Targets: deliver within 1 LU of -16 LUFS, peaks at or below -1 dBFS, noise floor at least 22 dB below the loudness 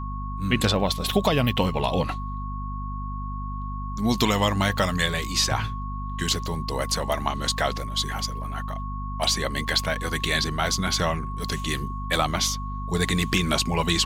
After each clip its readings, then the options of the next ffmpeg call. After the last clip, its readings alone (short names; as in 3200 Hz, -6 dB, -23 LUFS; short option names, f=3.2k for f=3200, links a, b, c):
hum 50 Hz; harmonics up to 250 Hz; hum level -29 dBFS; steady tone 1100 Hz; tone level -35 dBFS; loudness -25.5 LUFS; peak -8.0 dBFS; loudness target -16.0 LUFS
-> -af "bandreject=f=50:t=h:w=4,bandreject=f=100:t=h:w=4,bandreject=f=150:t=h:w=4,bandreject=f=200:t=h:w=4,bandreject=f=250:t=h:w=4"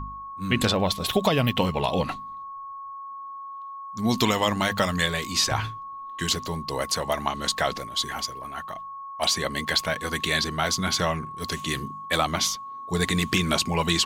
hum none; steady tone 1100 Hz; tone level -35 dBFS
-> -af "bandreject=f=1.1k:w=30"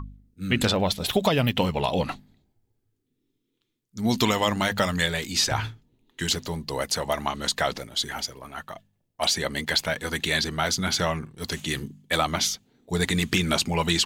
steady tone none; loudness -25.5 LUFS; peak -8.5 dBFS; loudness target -16.0 LUFS
-> -af "volume=9.5dB,alimiter=limit=-1dB:level=0:latency=1"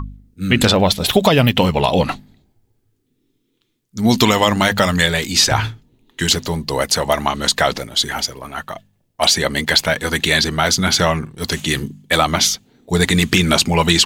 loudness -16.0 LUFS; peak -1.0 dBFS; noise floor -67 dBFS